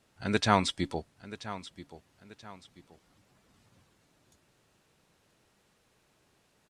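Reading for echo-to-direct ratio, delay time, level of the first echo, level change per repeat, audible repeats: -14.5 dB, 982 ms, -15.0 dB, -9.0 dB, 2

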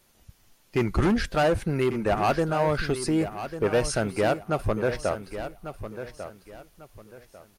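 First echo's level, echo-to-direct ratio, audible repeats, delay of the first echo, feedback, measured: -11.0 dB, -10.5 dB, 3, 1146 ms, 28%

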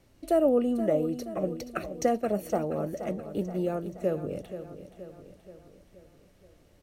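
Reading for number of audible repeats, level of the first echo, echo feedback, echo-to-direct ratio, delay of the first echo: 5, -11.5 dB, 54%, -10.0 dB, 476 ms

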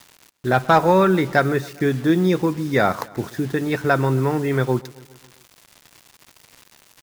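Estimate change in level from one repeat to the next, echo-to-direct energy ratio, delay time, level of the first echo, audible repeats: -4.5 dB, -19.5 dB, 134 ms, -21.5 dB, 4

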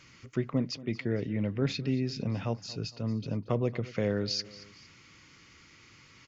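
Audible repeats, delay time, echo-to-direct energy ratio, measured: 2, 230 ms, -17.5 dB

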